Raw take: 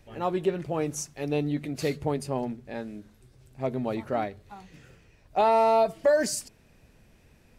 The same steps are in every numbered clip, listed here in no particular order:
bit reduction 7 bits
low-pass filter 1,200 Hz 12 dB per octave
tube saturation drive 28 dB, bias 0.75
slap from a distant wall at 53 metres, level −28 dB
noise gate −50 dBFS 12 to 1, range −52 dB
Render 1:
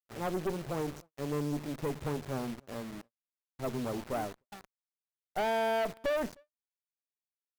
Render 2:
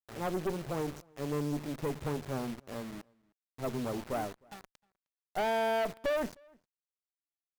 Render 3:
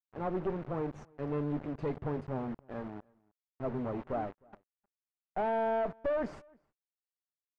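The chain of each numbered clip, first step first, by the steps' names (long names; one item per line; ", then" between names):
low-pass filter, then bit reduction, then tube saturation, then slap from a distant wall, then noise gate
noise gate, then low-pass filter, then bit reduction, then tube saturation, then slap from a distant wall
tube saturation, then bit reduction, then low-pass filter, then noise gate, then slap from a distant wall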